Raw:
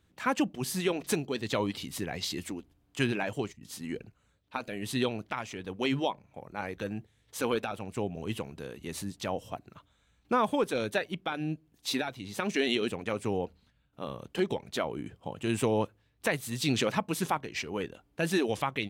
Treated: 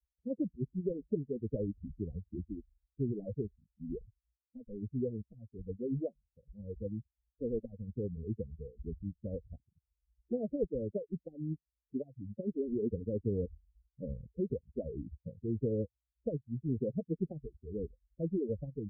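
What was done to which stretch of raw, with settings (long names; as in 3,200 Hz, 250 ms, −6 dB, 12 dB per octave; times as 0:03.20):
0:12.72–0:14.26: tilt shelving filter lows +4 dB
whole clip: spectral dynamics exaggerated over time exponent 3; Butterworth low-pass 500 Hz 96 dB per octave; every bin compressed towards the loudest bin 4 to 1; level +1 dB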